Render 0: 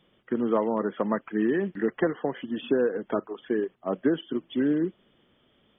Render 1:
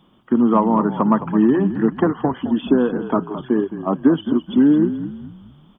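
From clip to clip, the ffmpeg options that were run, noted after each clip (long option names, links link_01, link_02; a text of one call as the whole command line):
ffmpeg -i in.wav -filter_complex "[0:a]equalizer=frequency=250:width_type=o:width=1:gain=6,equalizer=frequency=500:width_type=o:width=1:gain=-9,equalizer=frequency=1000:width_type=o:width=1:gain=9,equalizer=frequency=2000:width_type=o:width=1:gain=-12,acontrast=60,asplit=5[link_01][link_02][link_03][link_04][link_05];[link_02]adelay=214,afreqshift=-38,volume=-11.5dB[link_06];[link_03]adelay=428,afreqshift=-76,volume=-19.9dB[link_07];[link_04]adelay=642,afreqshift=-114,volume=-28.3dB[link_08];[link_05]adelay=856,afreqshift=-152,volume=-36.7dB[link_09];[link_01][link_06][link_07][link_08][link_09]amix=inputs=5:normalize=0,volume=2.5dB" out.wav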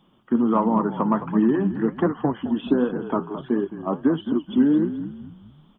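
ffmpeg -i in.wav -af "flanger=delay=3.3:depth=9.6:regen=68:speed=1.4:shape=triangular" out.wav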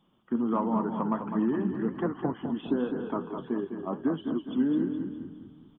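ffmpeg -i in.wav -af "aecho=1:1:204|408|612|816|1020:0.398|0.171|0.0736|0.0317|0.0136,volume=-8dB" out.wav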